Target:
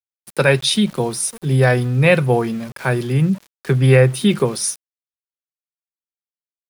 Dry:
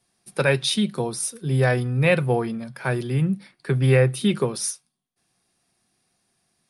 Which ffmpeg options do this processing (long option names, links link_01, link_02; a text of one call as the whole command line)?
ffmpeg -i in.wav -af "aeval=exprs='val(0)*gte(abs(val(0)),0.0106)':channel_layout=same,volume=5.5dB" out.wav